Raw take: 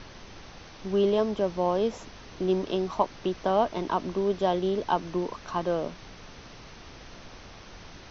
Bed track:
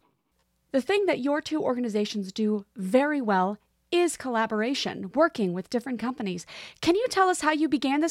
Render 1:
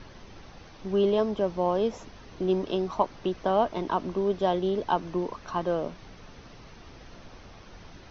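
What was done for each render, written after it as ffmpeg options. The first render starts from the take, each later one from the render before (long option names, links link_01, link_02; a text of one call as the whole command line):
ffmpeg -i in.wav -af "afftdn=noise_reduction=6:noise_floor=-48" out.wav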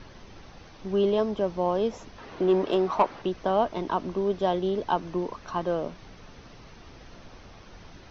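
ffmpeg -i in.wav -filter_complex "[0:a]asettb=1/sr,asplit=3[link_01][link_02][link_03];[link_01]atrim=end=2.184[link_04];[link_02]atrim=start=2.18:end=3.22,asetpts=PTS-STARTPTS,afade=type=in:duration=0.004:curve=qsin,afade=type=out:start_time=1.036:duration=0.004:curve=qsin,asplit=2[link_05][link_06];[link_06]highpass=frequency=720:poles=1,volume=17dB,asoftclip=type=tanh:threshold=-9.5dB[link_07];[link_05][link_07]amix=inputs=2:normalize=0,lowpass=frequency=1400:poles=1,volume=-6dB[link_08];[link_03]atrim=start=3.216[link_09];[link_04][link_08]acrossfade=duration=0.004:curve1=hsin:curve2=qsin[link_10];[link_10][link_09]acrossfade=duration=0.004:curve1=qsin:curve2=hsin" out.wav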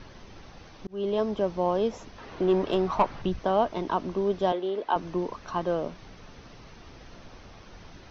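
ffmpeg -i in.wav -filter_complex "[0:a]asettb=1/sr,asplit=3[link_01][link_02][link_03];[link_01]atrim=end=2.184[link_04];[link_02]atrim=start=2.18:end=3.39,asetpts=PTS-STARTPTS,afade=type=in:duration=0.004:curve=qsin,afade=type=out:start_time=1.206:duration=0.004:curve=qsin,asubboost=boost=11:cutoff=170[link_05];[link_03]atrim=start=3.386[link_06];[link_04][link_05]acrossfade=duration=0.004:curve1=hsin:curve2=qsin[link_07];[link_07][link_06]acrossfade=duration=0.004:curve1=qsin:curve2=hsin,asettb=1/sr,asplit=3[link_08][link_09][link_10];[link_08]atrim=end=4.524[link_11];[link_09]atrim=start=4.52:end=4.96,asetpts=PTS-STARTPTS,afade=type=in:duration=0.004:curve=qsin,afade=type=out:start_time=0.436:duration=0.004:curve=qsin,acrossover=split=280 4200:gain=0.0708 1 0.2[link_12][link_13][link_14];[link_12][link_13][link_14]amix=inputs=3:normalize=0[link_15];[link_10]atrim=start=4.956[link_16];[link_11][link_15]acrossfade=duration=0.004:curve1=hsin:curve2=qsin[link_17];[link_17][link_16]acrossfade=duration=0.004:curve1=qsin:curve2=hsin,asplit=2[link_18][link_19];[link_18]atrim=end=0.87,asetpts=PTS-STARTPTS,afade=type=out:start_time=0.866:duration=0.004:curve=hsin[link_20];[link_19]atrim=start=0.87,asetpts=PTS-STARTPTS,afade=type=in:duration=0.52:curve=qsin[link_21];[link_20][link_21]concat=n=2:v=0:a=1" out.wav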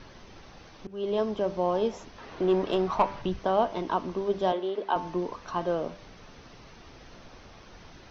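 ffmpeg -i in.wav -af "lowshelf=frequency=200:gain=-3.5,bandreject=frequency=98.32:width_type=h:width=4,bandreject=frequency=196.64:width_type=h:width=4,bandreject=frequency=294.96:width_type=h:width=4,bandreject=frequency=393.28:width_type=h:width=4,bandreject=frequency=491.6:width_type=h:width=4,bandreject=frequency=589.92:width_type=h:width=4,bandreject=frequency=688.24:width_type=h:width=4,bandreject=frequency=786.56:width_type=h:width=4,bandreject=frequency=884.88:width_type=h:width=4,bandreject=frequency=983.2:width_type=h:width=4,bandreject=frequency=1081.52:width_type=h:width=4,bandreject=frequency=1179.84:width_type=h:width=4,bandreject=frequency=1278.16:width_type=h:width=4,bandreject=frequency=1376.48:width_type=h:width=4,bandreject=frequency=1474.8:width_type=h:width=4,bandreject=frequency=1573.12:width_type=h:width=4,bandreject=frequency=1671.44:width_type=h:width=4,bandreject=frequency=1769.76:width_type=h:width=4,bandreject=frequency=1868.08:width_type=h:width=4,bandreject=frequency=1966.4:width_type=h:width=4,bandreject=frequency=2064.72:width_type=h:width=4,bandreject=frequency=2163.04:width_type=h:width=4,bandreject=frequency=2261.36:width_type=h:width=4,bandreject=frequency=2359.68:width_type=h:width=4,bandreject=frequency=2458:width_type=h:width=4,bandreject=frequency=2556.32:width_type=h:width=4,bandreject=frequency=2654.64:width_type=h:width=4,bandreject=frequency=2752.96:width_type=h:width=4,bandreject=frequency=2851.28:width_type=h:width=4,bandreject=frequency=2949.6:width_type=h:width=4,bandreject=frequency=3047.92:width_type=h:width=4,bandreject=frequency=3146.24:width_type=h:width=4,bandreject=frequency=3244.56:width_type=h:width=4" out.wav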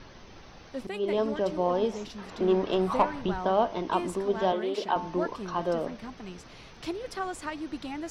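ffmpeg -i in.wav -i bed.wav -filter_complex "[1:a]volume=-12dB[link_01];[0:a][link_01]amix=inputs=2:normalize=0" out.wav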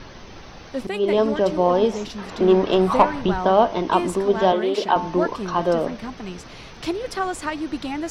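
ffmpeg -i in.wav -af "volume=8.5dB" out.wav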